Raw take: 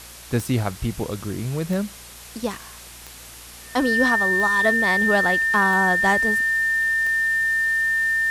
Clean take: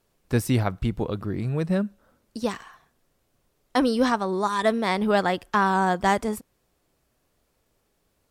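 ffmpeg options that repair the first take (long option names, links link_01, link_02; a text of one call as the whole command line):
ffmpeg -i in.wav -af "adeclick=threshold=4,bandreject=frequency=58.5:width_type=h:width=4,bandreject=frequency=117:width_type=h:width=4,bandreject=frequency=175.5:width_type=h:width=4,bandreject=frequency=234:width_type=h:width=4,bandreject=frequency=1800:width=30,afwtdn=0.01" out.wav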